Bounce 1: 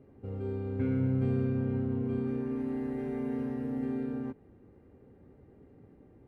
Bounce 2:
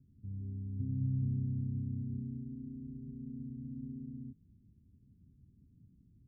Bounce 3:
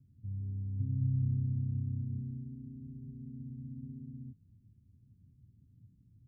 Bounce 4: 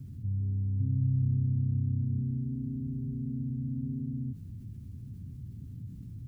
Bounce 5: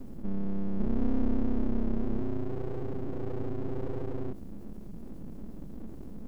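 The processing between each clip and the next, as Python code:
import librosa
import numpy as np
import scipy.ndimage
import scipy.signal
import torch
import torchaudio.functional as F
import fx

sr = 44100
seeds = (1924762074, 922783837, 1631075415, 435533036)

y1 = scipy.signal.sosfilt(scipy.signal.cheby2(4, 60, 700.0, 'lowpass', fs=sr, output='sos'), x)
y1 = y1 * librosa.db_to_amplitude(-2.5)
y2 = fx.peak_eq(y1, sr, hz=110.0, db=10.0, octaves=0.9)
y2 = y2 * librosa.db_to_amplitude(-5.0)
y3 = fx.env_flatten(y2, sr, amount_pct=50)
y3 = y3 * librosa.db_to_amplitude(3.0)
y4 = np.abs(y3)
y4 = y4 * librosa.db_to_amplitude(3.5)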